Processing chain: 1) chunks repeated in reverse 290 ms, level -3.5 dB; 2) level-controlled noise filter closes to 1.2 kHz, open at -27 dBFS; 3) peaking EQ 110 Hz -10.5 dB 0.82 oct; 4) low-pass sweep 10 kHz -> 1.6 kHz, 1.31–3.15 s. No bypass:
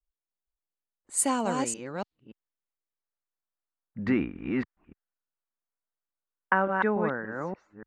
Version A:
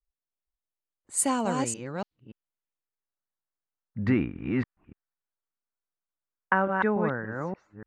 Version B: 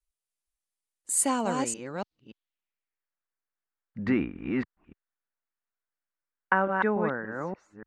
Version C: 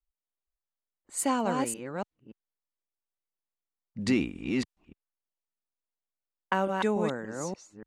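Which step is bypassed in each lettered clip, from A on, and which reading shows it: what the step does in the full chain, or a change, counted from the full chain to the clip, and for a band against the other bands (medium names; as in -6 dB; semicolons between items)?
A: 3, 125 Hz band +5.5 dB; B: 2, 8 kHz band +1.5 dB; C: 4, 4 kHz band +5.5 dB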